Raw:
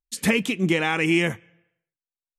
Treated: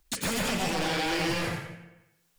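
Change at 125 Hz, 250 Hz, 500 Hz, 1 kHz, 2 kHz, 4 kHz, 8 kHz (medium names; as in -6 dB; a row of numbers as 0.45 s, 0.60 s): -6.0 dB, -8.5 dB, -6.0 dB, 0.0 dB, -7.0 dB, -0.5 dB, +0.5 dB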